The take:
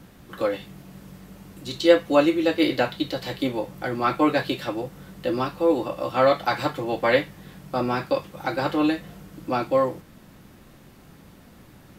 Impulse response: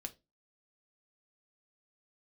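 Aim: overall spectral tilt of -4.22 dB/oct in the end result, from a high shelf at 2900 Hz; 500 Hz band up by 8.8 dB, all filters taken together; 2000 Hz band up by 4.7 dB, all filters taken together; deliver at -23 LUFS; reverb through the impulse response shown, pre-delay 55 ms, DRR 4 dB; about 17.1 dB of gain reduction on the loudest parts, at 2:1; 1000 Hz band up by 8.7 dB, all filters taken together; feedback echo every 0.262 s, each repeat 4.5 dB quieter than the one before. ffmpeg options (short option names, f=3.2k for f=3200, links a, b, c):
-filter_complex "[0:a]equalizer=f=500:t=o:g=7.5,equalizer=f=1k:t=o:g=8.5,equalizer=f=2k:t=o:g=4,highshelf=f=2.9k:g=-4.5,acompressor=threshold=-34dB:ratio=2,aecho=1:1:262|524|786|1048|1310|1572|1834|2096|2358:0.596|0.357|0.214|0.129|0.0772|0.0463|0.0278|0.0167|0.01,asplit=2[a][b];[1:a]atrim=start_sample=2205,adelay=55[c];[b][c]afir=irnorm=-1:irlink=0,volume=-0.5dB[d];[a][d]amix=inputs=2:normalize=0,volume=3.5dB"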